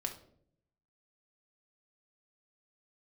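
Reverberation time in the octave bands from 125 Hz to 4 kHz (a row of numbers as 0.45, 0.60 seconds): 1.1, 0.95, 0.75, 0.50, 0.40, 0.40 seconds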